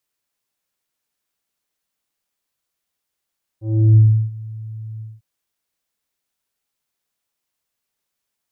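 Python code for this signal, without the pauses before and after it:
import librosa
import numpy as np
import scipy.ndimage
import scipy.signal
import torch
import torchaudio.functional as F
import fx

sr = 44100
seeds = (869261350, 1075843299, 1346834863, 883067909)

y = fx.sub_voice(sr, note=45, wave='square', cutoff_hz=140.0, q=0.85, env_oct=2.0, env_s=0.52, attack_ms=354.0, decay_s=0.34, sustain_db=-22, release_s=0.2, note_s=1.4, slope=24)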